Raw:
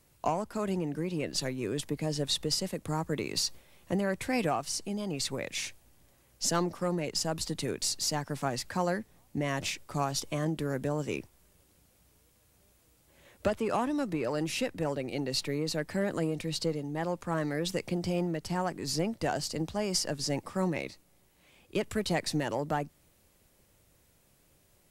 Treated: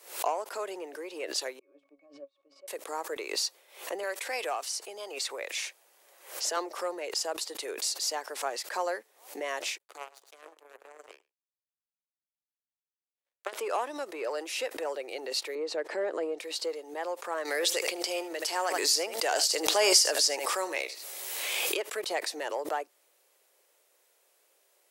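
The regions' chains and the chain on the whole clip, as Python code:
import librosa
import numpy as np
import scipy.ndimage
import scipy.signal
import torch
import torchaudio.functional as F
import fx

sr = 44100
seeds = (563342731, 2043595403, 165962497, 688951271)

y = fx.chain(x, sr, fx.high_shelf(hz=9200.0, db=-10.5),
    fx.octave_resonator(note='C#', decay_s=0.15),
    fx.upward_expand(threshold_db=-54.0, expansion=2.5), at=(1.59, 2.68))
y = fx.chain(y, sr, fx.low_shelf(hz=310.0, db=-8.0),
    fx.band_squash(depth_pct=40), at=(4.03, 6.57))
y = fx.chain(y, sr, fx.notch(hz=5400.0, q=5.3),
    fx.echo_feedback(ms=107, feedback_pct=28, wet_db=-8.5),
    fx.power_curve(exponent=3.0), at=(9.78, 13.53))
y = fx.chain(y, sr, fx.lowpass(hz=8600.0, slope=12),
    fx.tilt_eq(slope=-3.0), at=(15.55, 16.39))
y = fx.chain(y, sr, fx.high_shelf(hz=2000.0, db=10.0),
    fx.echo_single(ms=77, db=-15.5),
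    fx.pre_swell(db_per_s=21.0), at=(17.45, 21.77))
y = scipy.signal.sosfilt(scipy.signal.butter(6, 400.0, 'highpass', fs=sr, output='sos'), y)
y = fx.pre_swell(y, sr, db_per_s=120.0)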